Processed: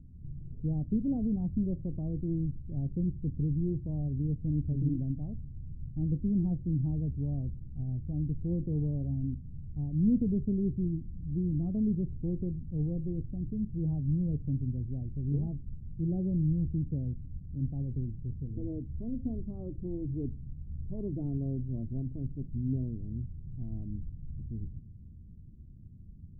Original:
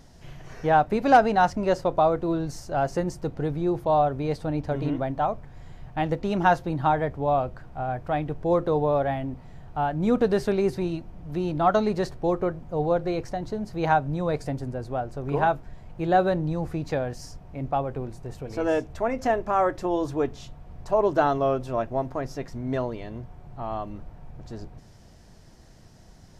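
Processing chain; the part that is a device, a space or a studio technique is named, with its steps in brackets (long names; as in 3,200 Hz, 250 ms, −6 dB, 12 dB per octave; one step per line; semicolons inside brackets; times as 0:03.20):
the neighbour's flat through the wall (low-pass filter 250 Hz 24 dB per octave; parametric band 80 Hz +6.5 dB 0.79 octaves)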